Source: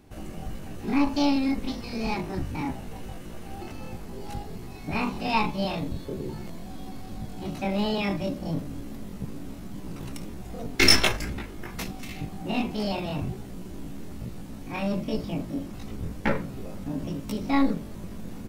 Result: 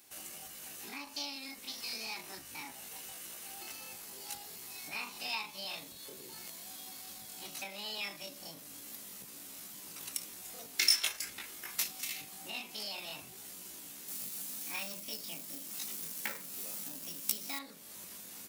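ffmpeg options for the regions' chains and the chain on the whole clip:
ffmpeg -i in.wav -filter_complex "[0:a]asettb=1/sr,asplit=3[link_01][link_02][link_03];[link_01]atrim=end=14.084[link_04];[link_02]atrim=start=14.08:end=17.59,asetpts=PTS-STARTPTS,afade=type=in:duration=0.004:curve=qsin,afade=type=out:start_time=3.506:duration=0.004:curve=qsin,highshelf=frequency=4600:gain=6,acrusher=bits=5:mode=log:mix=0:aa=0.000001,highpass=frequency=170:width_type=q:width=1.6[link_05];[link_03]atrim=start=17.586[link_06];[link_04][link_05]acrossfade=duration=0.004:curve1=hsin:curve2=qsin[link_07];[link_07][link_06]acrossfade=duration=0.004:curve1=qsin:curve2=hsin,acompressor=threshold=-33dB:ratio=3,aderivative,volume=9.5dB" out.wav

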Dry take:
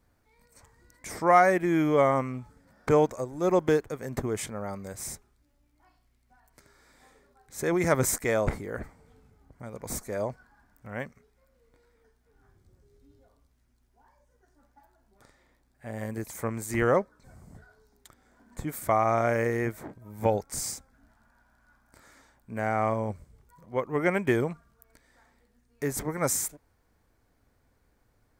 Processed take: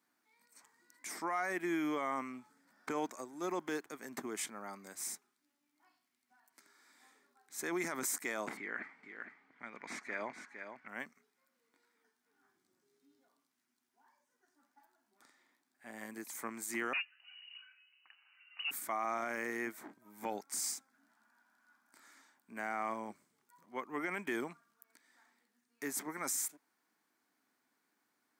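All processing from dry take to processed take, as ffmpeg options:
ffmpeg -i in.wav -filter_complex "[0:a]asettb=1/sr,asplit=3[link_01][link_02][link_03];[link_01]atrim=end=8.574[link_04];[link_02]atrim=start=8.57:end=10.88,asetpts=PTS-STARTPTS,afade=type=in:duration=0.004:curve=qsin,afade=type=out:start_time=2.306:duration=0.004:curve=qsin,lowpass=3700,equalizer=frequency=2100:width_type=o:width=1.1:gain=13,aecho=1:1:460:0.376,atrim=end_sample=101871[link_05];[link_03]atrim=start=10.876[link_06];[link_04][link_05]acrossfade=duration=0.004:curve1=hsin:curve2=qsin[link_07];[link_07][link_06]acrossfade=duration=0.004:curve1=qsin:curve2=hsin,asettb=1/sr,asplit=3[link_08][link_09][link_10];[link_08]atrim=end=16.934[link_11];[link_09]atrim=start=16.93:end=18.71,asetpts=PTS-STARTPTS,afade=type=in:duration=0.004:curve=qsin,afade=type=out:start_time=1.776:duration=0.004:curve=qsin,asoftclip=type=hard:threshold=-29dB,highpass=44,lowpass=frequency=2600:width_type=q:width=0.5098,lowpass=frequency=2600:width_type=q:width=0.6013,lowpass=frequency=2600:width_type=q:width=0.9,lowpass=frequency=2600:width_type=q:width=2.563,afreqshift=-3000[link_12];[link_10]atrim=start=18.706[link_13];[link_11][link_12]acrossfade=duration=0.004:curve1=hsin:curve2=qsin[link_14];[link_14][link_13]acrossfade=duration=0.004:curve1=qsin:curve2=hsin,highpass=frequency=260:width=0.5412,highpass=frequency=260:width=1.3066,equalizer=frequency=510:width_type=o:width=0.91:gain=-14,alimiter=limit=-23dB:level=0:latency=1:release=27,volume=-3.5dB" out.wav

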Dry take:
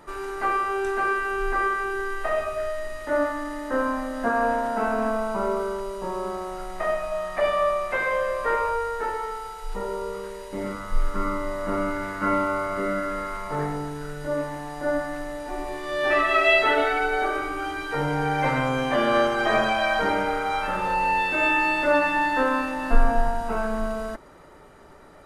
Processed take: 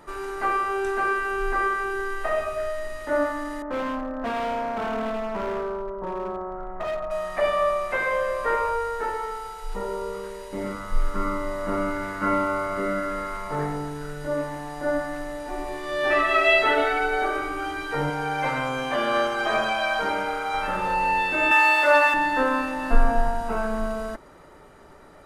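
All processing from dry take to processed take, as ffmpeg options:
ffmpeg -i in.wav -filter_complex "[0:a]asettb=1/sr,asplit=3[link_01][link_02][link_03];[link_01]atrim=end=3.624[link_04];[link_02]atrim=start=3.62:end=7.11,asetpts=PTS-STARTPTS,afade=type=in:duration=0.004:curve=qsin,afade=type=out:start_time=3.486:duration=0.004:curve=qsin,lowpass=frequency=1500:width=0.5412,lowpass=frequency=1500:width=1.3066,asoftclip=type=hard:threshold=-25dB[link_05];[link_03]atrim=start=7.106[link_06];[link_04][link_05]acrossfade=duration=0.004:curve1=hsin:curve2=qsin[link_07];[link_07][link_06]acrossfade=duration=0.004:curve1=qsin:curve2=hsin,asettb=1/sr,asplit=3[link_08][link_09][link_10];[link_08]atrim=end=18.104[link_11];[link_09]atrim=start=18.1:end=20.54,asetpts=PTS-STARTPTS,afade=type=in:duration=0.004:curve=qsin,afade=type=out:start_time=2.436:duration=0.004:curve=qsin,lowshelf=frequency=460:gain=-7.5,bandreject=frequency=1900:width=11[link_12];[link_10]atrim=start=20.536[link_13];[link_11][link_12]acrossfade=duration=0.004:curve1=hsin:curve2=qsin[link_14];[link_14][link_13]acrossfade=duration=0.004:curve1=qsin:curve2=hsin,asettb=1/sr,asplit=3[link_15][link_16][link_17];[link_15]atrim=end=21.514[link_18];[link_16]atrim=start=21.51:end=22.14,asetpts=PTS-STARTPTS,afade=type=in:duration=0.004:curve=qsin,afade=type=out:start_time=0.626:duration=0.004:curve=qsin,highpass=620,acontrast=50,aeval=exprs='sgn(val(0))*max(abs(val(0))-0.00596,0)':channel_layout=same[link_19];[link_17]atrim=start=22.136[link_20];[link_18][link_19]acrossfade=duration=0.004:curve1=hsin:curve2=qsin[link_21];[link_21][link_20]acrossfade=duration=0.004:curve1=qsin:curve2=hsin" out.wav

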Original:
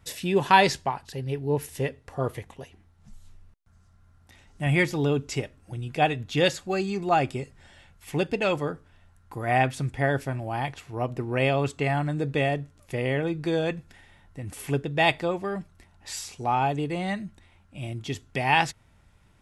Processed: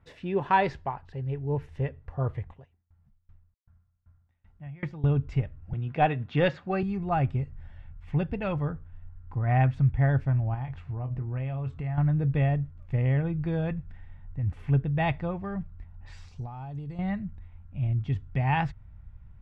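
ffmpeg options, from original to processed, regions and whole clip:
ffmpeg -i in.wav -filter_complex "[0:a]asettb=1/sr,asplit=3[link_01][link_02][link_03];[link_01]atrim=end=2.524[link_04];[link_02]atrim=start=2.52:end=5.04,asetpts=PTS-STARTPTS,afade=type=in:duration=0.004:curve=qsin,afade=type=out:start_time=2.516:duration=0.004:curve=qsin,highpass=frequency=130:poles=1,aeval=exprs='val(0)*pow(10,-28*if(lt(mod(2.6*n/s,1),2*abs(2.6)/1000),1-mod(2.6*n/s,1)/(2*abs(2.6)/1000),(mod(2.6*n/s,1)-2*abs(2.6)/1000)/(1-2*abs(2.6)/1000))/20)':channel_layout=same[link_05];[link_03]atrim=start=5.036[link_06];[link_04][link_05]acrossfade=duration=0.004:curve1=hsin:curve2=qsin[link_07];[link_07][link_06]acrossfade=duration=0.004:curve1=qsin:curve2=hsin,asettb=1/sr,asplit=3[link_08][link_09][link_10];[link_08]atrim=end=5.734[link_11];[link_09]atrim=start=5.73:end=6.83,asetpts=PTS-STARTPTS,afade=type=in:duration=0.004:curve=qsin,afade=type=out:start_time=1.096:duration=0.004:curve=qsin,highpass=230,lowpass=4800,acontrast=50[link_12];[link_10]atrim=start=6.826[link_13];[link_11][link_12]acrossfade=duration=0.004:curve1=hsin:curve2=qsin[link_14];[link_14][link_13]acrossfade=duration=0.004:curve1=qsin:curve2=hsin,asettb=1/sr,asplit=3[link_15][link_16][link_17];[link_15]atrim=end=10.544[link_18];[link_16]atrim=start=10.54:end=11.98,asetpts=PTS-STARTPTS,afade=type=in:duration=0.004:curve=qsin,afade=type=out:start_time=1.436:duration=0.004:curve=qsin,asplit=2[link_19][link_20];[link_20]adelay=23,volume=-10dB[link_21];[link_19][link_21]amix=inputs=2:normalize=0,atrim=end_sample=63504,acompressor=threshold=-35dB:ratio=2.5:attack=3.2:release=140:knee=1:detection=peak[link_22];[link_17]atrim=start=11.976[link_23];[link_18][link_22]acrossfade=duration=0.004:curve1=hsin:curve2=qsin[link_24];[link_24][link_23]acrossfade=duration=0.004:curve1=qsin:curve2=hsin,asettb=1/sr,asplit=3[link_25][link_26][link_27];[link_25]atrim=end=16.284[link_28];[link_26]atrim=start=16.28:end=16.99,asetpts=PTS-STARTPTS,afade=type=in:duration=0.004:curve=qsin,afade=type=out:start_time=0.706:duration=0.004:curve=qsin,highshelf=frequency=3500:width_type=q:width=1.5:gain=10.5,acompressor=threshold=-35dB:ratio=8:attack=3.2:release=140:knee=1:detection=peak[link_29];[link_27]atrim=start=16.986[link_30];[link_28][link_29]acrossfade=duration=0.004:curve1=hsin:curve2=qsin[link_31];[link_31][link_30]acrossfade=duration=0.004:curve1=qsin:curve2=hsin,asubboost=boost=10:cutoff=110,lowpass=1800,volume=-4dB" out.wav

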